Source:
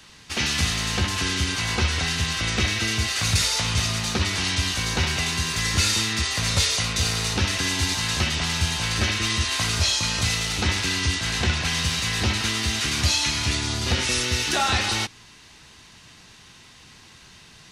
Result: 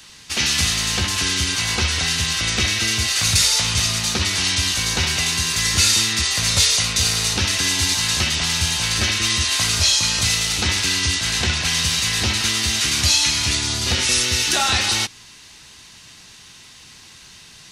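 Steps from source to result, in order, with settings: high shelf 2900 Hz +9 dB

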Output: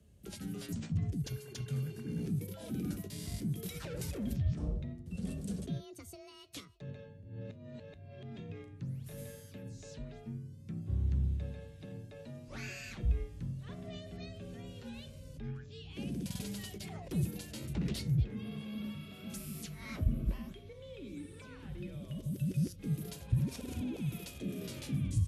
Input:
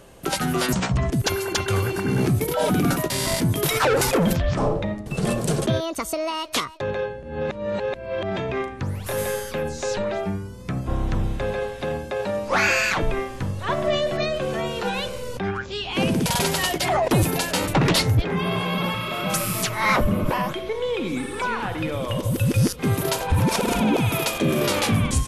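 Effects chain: passive tone stack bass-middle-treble 10-0-1; frequency shift +36 Hz; flange 0.18 Hz, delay 4.7 ms, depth 6.1 ms, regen +80%; gain +4 dB

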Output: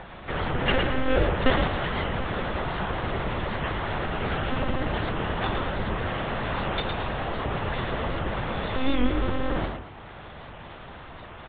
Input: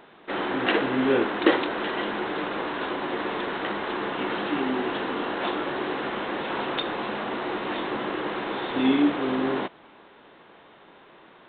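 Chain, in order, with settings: upward compressor, threshold -33 dBFS; monotone LPC vocoder at 8 kHz 260 Hz; bell 270 Hz -4 dB 0.24 oct; on a send: frequency-shifting echo 0.111 s, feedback 35%, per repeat +45 Hz, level -6 dB; on the sum: record warp 78 rpm, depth 100 cents

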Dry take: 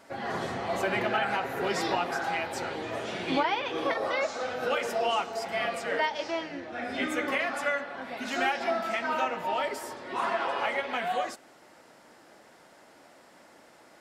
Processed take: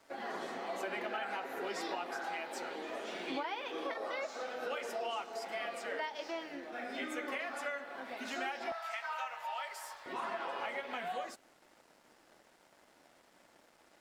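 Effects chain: HPF 230 Hz 24 dB/oct, from 8.72 s 750 Hz, from 10.06 s 140 Hz; crossover distortion -58.5 dBFS; compressor 2:1, threshold -36 dBFS, peak gain reduction 8.5 dB; gain -4 dB

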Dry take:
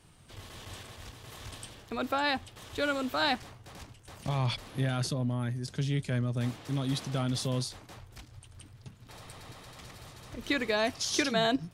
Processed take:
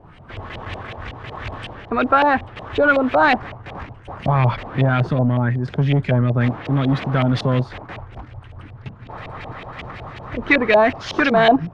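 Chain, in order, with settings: sine folder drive 7 dB, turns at -14 dBFS; LFO low-pass saw up 5.4 Hz 620–2800 Hz; gain +3 dB

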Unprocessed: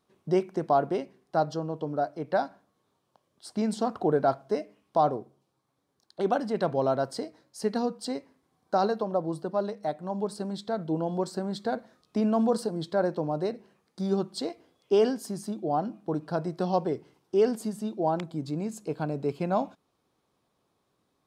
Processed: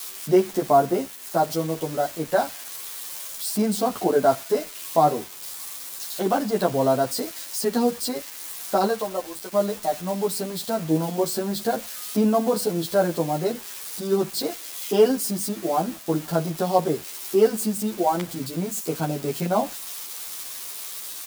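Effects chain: switching spikes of -29 dBFS; 0.7–1.43 bell 3500 Hz -3.5 dB 1.8 oct; 8.86–9.51 HPF 430 Hz -> 1300 Hz 6 dB/oct; bit-crush 8-bit; endless flanger 10.7 ms -0.35 Hz; gain +8 dB

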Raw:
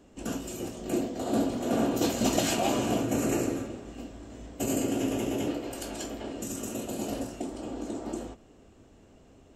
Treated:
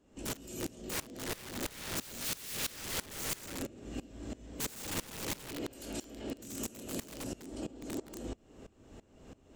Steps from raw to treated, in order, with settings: wrapped overs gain 27 dB; notch 710 Hz, Q 19; limiter -33.5 dBFS, peak gain reduction 8.5 dB; dynamic EQ 1000 Hz, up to -7 dB, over -56 dBFS, Q 0.94; dB-ramp tremolo swelling 3 Hz, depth 21 dB; gain +7.5 dB

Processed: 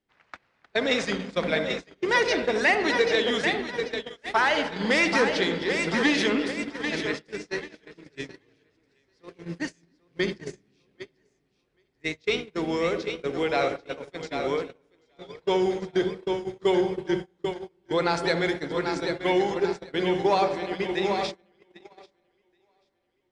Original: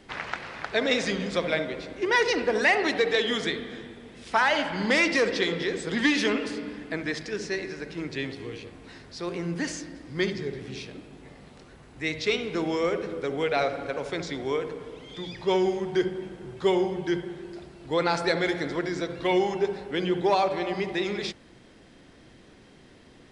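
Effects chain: split-band echo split 320 Hz, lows 0.319 s, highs 0.788 s, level -6 dB; gate -28 dBFS, range -30 dB

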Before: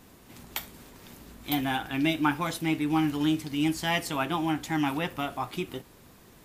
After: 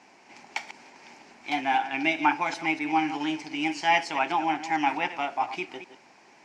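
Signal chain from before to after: reverse delay 0.127 s, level -12 dB; speaker cabinet 390–6100 Hz, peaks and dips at 480 Hz -7 dB, 840 Hz +9 dB, 1200 Hz -6 dB, 2300 Hz +8 dB, 3600 Hz -10 dB, 5500 Hz +3 dB; gain +2 dB

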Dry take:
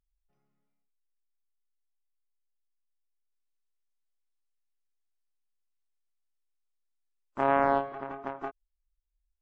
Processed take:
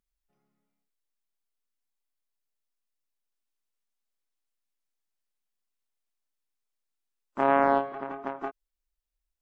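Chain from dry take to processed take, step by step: resonant low shelf 140 Hz -7 dB, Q 1.5; gain +2 dB

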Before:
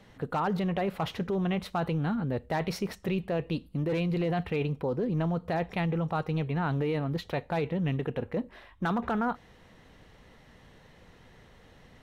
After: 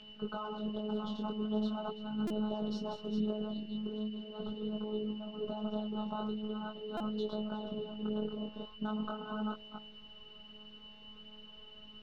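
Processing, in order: reverse delay 0.227 s, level -6 dB; elliptic band-stop 1400–3500 Hz; de-hum 93.75 Hz, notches 10; negative-ratio compressor -31 dBFS, ratio -0.5; whine 2900 Hz -38 dBFS; robotiser 213 Hz; chorus 0.41 Hz, delay 19 ms, depth 5.6 ms; band noise 1400–5000 Hz -70 dBFS; air absorption 180 m; stuck buffer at 2.27/6.97, samples 128, times 10

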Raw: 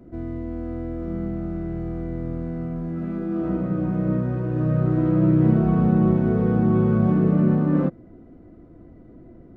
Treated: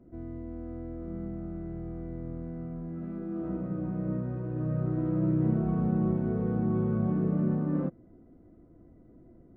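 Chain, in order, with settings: high shelf 2300 Hz -10 dB; gain -9 dB

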